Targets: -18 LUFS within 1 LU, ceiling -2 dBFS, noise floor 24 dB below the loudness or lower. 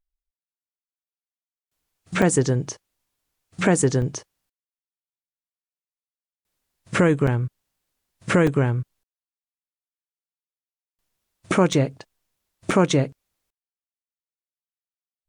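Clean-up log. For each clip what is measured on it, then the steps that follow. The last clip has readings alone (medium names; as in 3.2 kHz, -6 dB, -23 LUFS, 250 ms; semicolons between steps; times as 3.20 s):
dropouts 6; longest dropout 4.1 ms; loudness -22.0 LUFS; peak level -6.5 dBFS; loudness target -18.0 LUFS
-> interpolate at 2.22/4.02/7.27/8.47/11.73/12.71 s, 4.1 ms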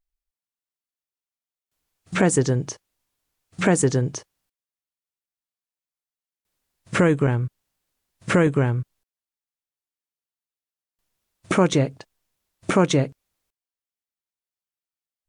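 dropouts 0; loudness -22.0 LUFS; peak level -6.5 dBFS; loudness target -18.0 LUFS
-> trim +4 dB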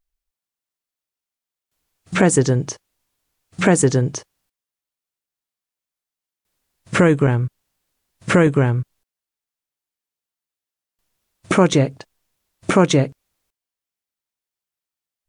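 loudness -18.0 LUFS; peak level -2.5 dBFS; noise floor -89 dBFS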